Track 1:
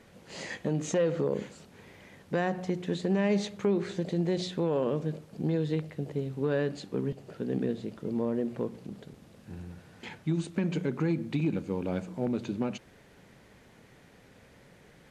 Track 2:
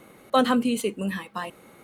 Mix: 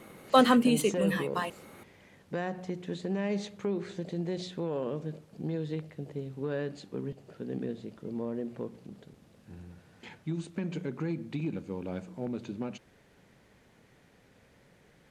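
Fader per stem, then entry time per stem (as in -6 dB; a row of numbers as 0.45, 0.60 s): -5.0, -0.5 dB; 0.00, 0.00 s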